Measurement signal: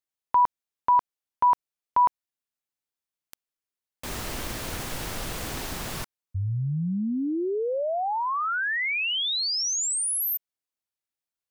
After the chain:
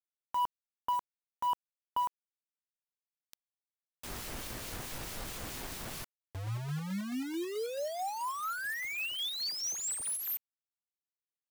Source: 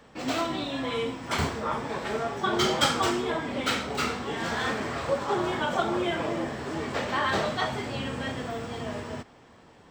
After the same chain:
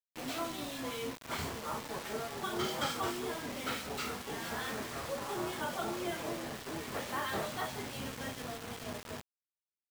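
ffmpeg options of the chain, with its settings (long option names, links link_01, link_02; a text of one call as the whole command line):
ffmpeg -i in.wav -filter_complex "[0:a]acrossover=split=2000[link_01][link_02];[link_01]aeval=exprs='val(0)*(1-0.5/2+0.5/2*cos(2*PI*4.6*n/s))':channel_layout=same[link_03];[link_02]aeval=exprs='val(0)*(1-0.5/2-0.5/2*cos(2*PI*4.6*n/s))':channel_layout=same[link_04];[link_03][link_04]amix=inputs=2:normalize=0,acrusher=bits=5:mix=0:aa=0.000001,asoftclip=type=tanh:threshold=-18.5dB,volume=-7dB" out.wav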